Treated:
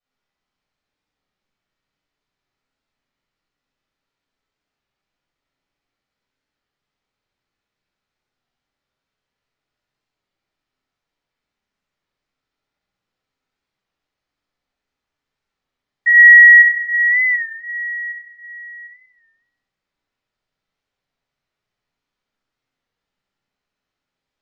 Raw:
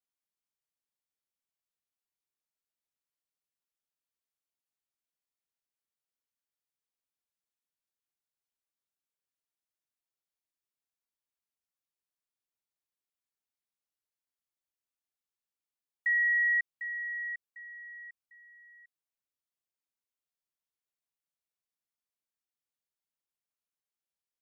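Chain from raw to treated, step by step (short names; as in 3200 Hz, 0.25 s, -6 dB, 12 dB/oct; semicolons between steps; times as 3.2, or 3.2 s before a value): air absorption 160 m; on a send: flutter echo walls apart 11.3 m, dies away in 0.71 s; on the sum: shoebox room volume 390 m³, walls mixed, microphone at 6.1 m; record warp 33 1/3 rpm, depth 100 cents; gain +4 dB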